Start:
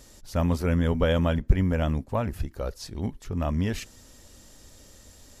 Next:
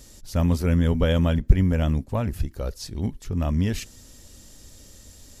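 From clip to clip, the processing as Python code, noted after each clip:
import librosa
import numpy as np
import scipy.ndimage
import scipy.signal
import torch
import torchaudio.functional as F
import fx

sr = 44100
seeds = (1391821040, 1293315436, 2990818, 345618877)

y = fx.peak_eq(x, sr, hz=970.0, db=-6.5, octaves=2.8)
y = y * librosa.db_to_amplitude(4.5)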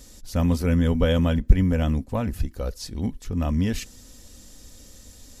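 y = x + 0.31 * np.pad(x, (int(4.0 * sr / 1000.0), 0))[:len(x)]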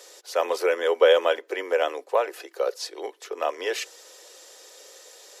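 y = scipy.signal.sosfilt(scipy.signal.butter(12, 370.0, 'highpass', fs=sr, output='sos'), x)
y = fx.high_shelf(y, sr, hz=5500.0, db=-11.0)
y = y * librosa.db_to_amplitude(8.0)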